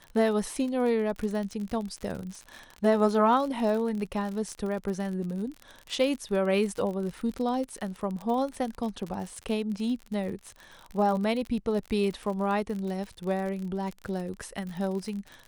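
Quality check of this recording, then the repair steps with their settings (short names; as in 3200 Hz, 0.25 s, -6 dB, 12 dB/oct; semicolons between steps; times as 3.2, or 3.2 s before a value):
crackle 50/s -33 dBFS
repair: de-click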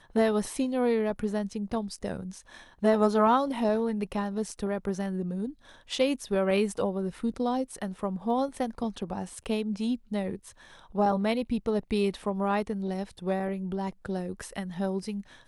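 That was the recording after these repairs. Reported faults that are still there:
none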